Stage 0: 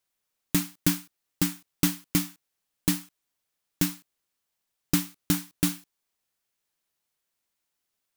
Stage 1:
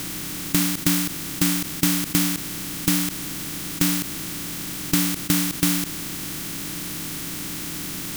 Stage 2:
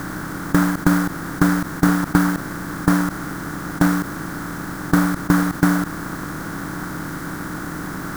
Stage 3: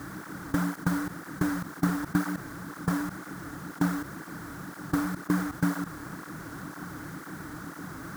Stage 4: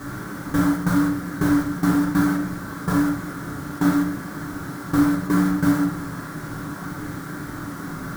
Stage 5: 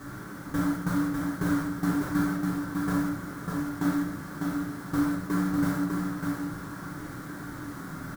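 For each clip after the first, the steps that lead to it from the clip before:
per-bin compression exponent 0.2
half-waves squared off; resonant high shelf 2000 Hz -10 dB, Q 3
tape flanging out of phase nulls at 2 Hz, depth 6 ms; gain -8.5 dB
shoebox room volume 65 m³, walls mixed, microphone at 1.1 m; gain +2 dB
echo 0.6 s -4 dB; gain -8 dB

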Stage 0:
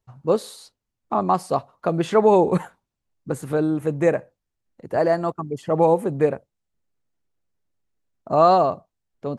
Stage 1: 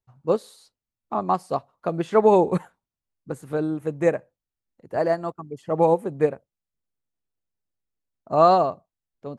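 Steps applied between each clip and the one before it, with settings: upward expander 1.5:1, over -30 dBFS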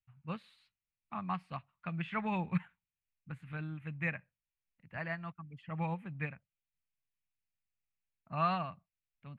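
EQ curve 180 Hz 0 dB, 410 Hz -25 dB, 2500 Hz +10 dB, 6000 Hz -22 dB; gain -6.5 dB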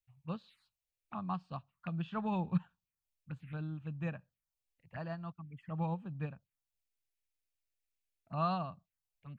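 envelope phaser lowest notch 170 Hz, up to 2100 Hz, full sweep at -41 dBFS; gain +1 dB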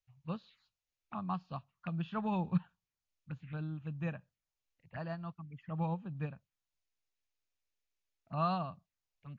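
gain +1 dB; MP3 40 kbps 16000 Hz

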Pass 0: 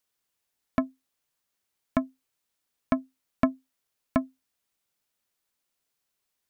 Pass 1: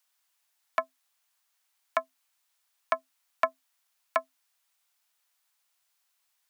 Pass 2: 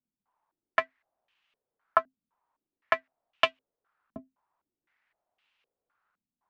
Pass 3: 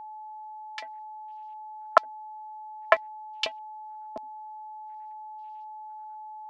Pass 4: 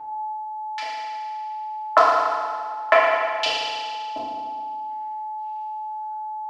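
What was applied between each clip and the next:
HPF 710 Hz 24 dB/oct; gain +5.5 dB
half-waves squared off; stepped low-pass 3.9 Hz 230–2800 Hz; gain -4 dB
LFO high-pass square 9.1 Hz 470–4800 Hz; whine 860 Hz -42 dBFS; gain +3 dB
FDN reverb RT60 1.9 s, low-frequency decay 1×, high-frequency decay 1×, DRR -8.5 dB

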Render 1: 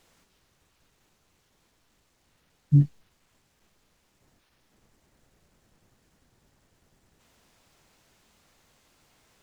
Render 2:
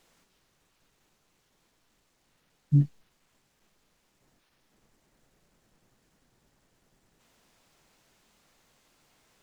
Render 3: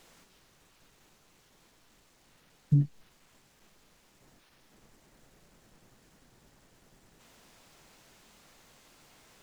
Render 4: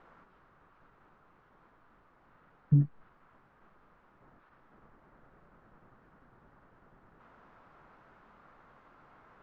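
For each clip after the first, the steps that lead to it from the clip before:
bell 75 Hz -10.5 dB 0.63 oct; gain -2 dB
compressor 4:1, threshold -29 dBFS, peak gain reduction 11 dB; gain +7 dB
synth low-pass 1300 Hz, resonance Q 2.5

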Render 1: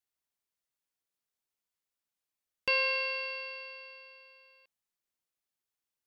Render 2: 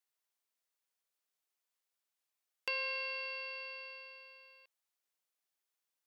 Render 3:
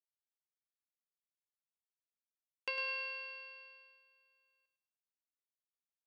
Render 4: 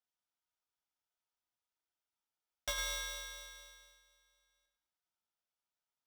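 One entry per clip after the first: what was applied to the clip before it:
HPF 420 Hz; compressor 2:1, threshold -43 dBFS, peak gain reduction 10 dB; gain +1 dB
air absorption 64 m; feedback echo 0.104 s, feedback 36%, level -10 dB; upward expander 2.5:1, over -49 dBFS; gain +1 dB
reverb RT60 0.30 s, pre-delay 3 ms, DRR 0 dB; polarity switched at an audio rate 1100 Hz; gain -6 dB

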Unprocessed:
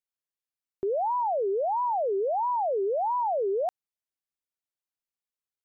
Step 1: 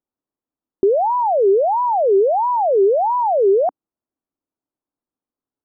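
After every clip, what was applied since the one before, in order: LPF 1200 Hz 24 dB/oct; bell 280 Hz +12 dB 0.84 oct; gain +9 dB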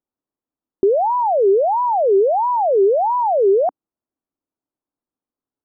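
nothing audible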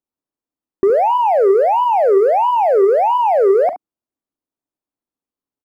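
sample leveller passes 1; early reflections 41 ms -15.5 dB, 70 ms -12.5 dB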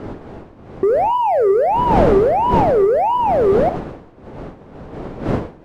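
wind noise 460 Hz -22 dBFS; gain -2 dB

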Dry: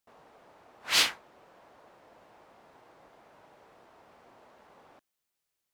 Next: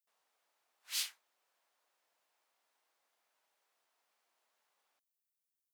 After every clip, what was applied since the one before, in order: differentiator; gain -8.5 dB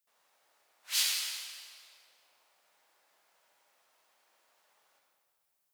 reverb RT60 2.1 s, pre-delay 42 ms, DRR -1.5 dB; gain +6.5 dB

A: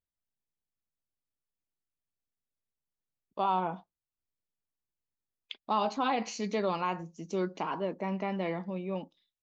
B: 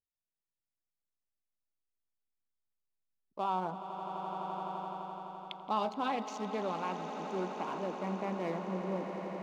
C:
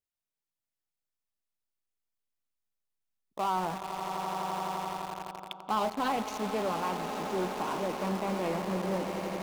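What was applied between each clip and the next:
Wiener smoothing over 15 samples; swelling echo 85 ms, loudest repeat 8, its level -14.5 dB; vocal rider within 5 dB 2 s; gain -4 dB
in parallel at -10.5 dB: companded quantiser 2-bit; on the sum: Doppler distortion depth 0.2 ms

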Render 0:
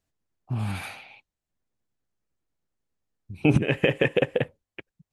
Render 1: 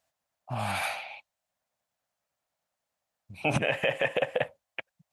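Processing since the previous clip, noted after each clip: HPF 150 Hz 6 dB/oct; resonant low shelf 490 Hz -8 dB, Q 3; limiter -20 dBFS, peak gain reduction 11 dB; gain +5 dB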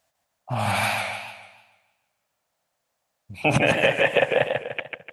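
warbling echo 0.149 s, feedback 42%, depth 136 cents, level -4.5 dB; gain +6.5 dB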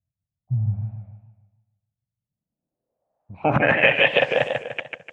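low-pass sweep 120 Hz -> 6800 Hz, 2.16–4.47

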